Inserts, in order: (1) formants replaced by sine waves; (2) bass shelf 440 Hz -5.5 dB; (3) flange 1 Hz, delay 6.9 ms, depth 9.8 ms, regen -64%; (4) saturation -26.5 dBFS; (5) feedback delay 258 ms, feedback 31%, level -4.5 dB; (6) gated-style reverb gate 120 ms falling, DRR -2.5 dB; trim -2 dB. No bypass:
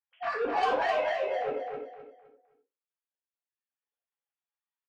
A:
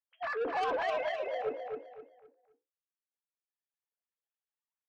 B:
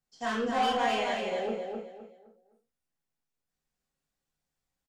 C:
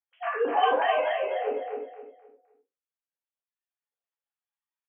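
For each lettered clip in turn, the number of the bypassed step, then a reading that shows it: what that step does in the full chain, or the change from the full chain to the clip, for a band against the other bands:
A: 6, echo-to-direct 4.5 dB to -4.0 dB; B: 1, 250 Hz band +9.5 dB; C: 4, distortion -12 dB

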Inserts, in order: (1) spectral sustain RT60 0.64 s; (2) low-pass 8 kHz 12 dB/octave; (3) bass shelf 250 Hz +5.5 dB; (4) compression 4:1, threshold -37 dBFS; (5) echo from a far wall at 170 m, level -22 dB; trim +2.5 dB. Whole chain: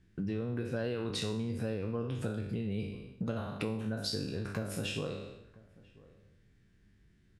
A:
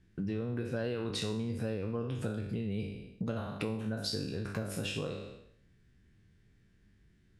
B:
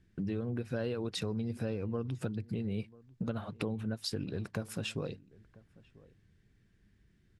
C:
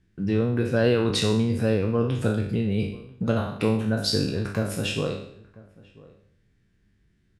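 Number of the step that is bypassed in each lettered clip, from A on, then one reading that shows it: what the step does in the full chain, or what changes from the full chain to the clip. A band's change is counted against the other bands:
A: 5, echo-to-direct -25.0 dB to none; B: 1, 250 Hz band +1.5 dB; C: 4, mean gain reduction 10.0 dB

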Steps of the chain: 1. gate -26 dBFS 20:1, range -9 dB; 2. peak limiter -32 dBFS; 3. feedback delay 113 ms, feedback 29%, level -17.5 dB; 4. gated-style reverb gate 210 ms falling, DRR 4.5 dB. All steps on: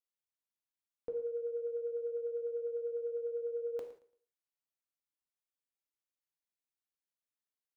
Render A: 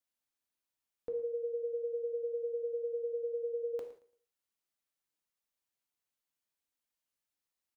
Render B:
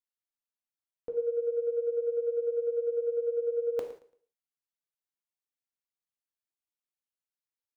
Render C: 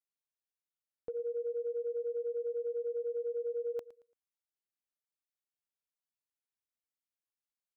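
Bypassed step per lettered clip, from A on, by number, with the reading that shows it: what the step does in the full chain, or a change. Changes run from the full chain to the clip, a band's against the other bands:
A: 1, loudness change +1.0 LU; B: 2, mean gain reduction 4.5 dB; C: 4, loudness change +1.5 LU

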